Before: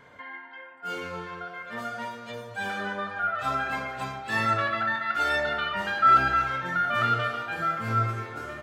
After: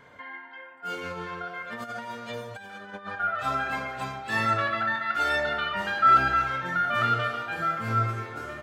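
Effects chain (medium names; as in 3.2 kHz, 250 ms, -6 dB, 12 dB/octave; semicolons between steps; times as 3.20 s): 0.95–3.20 s: compressor with a negative ratio -36 dBFS, ratio -0.5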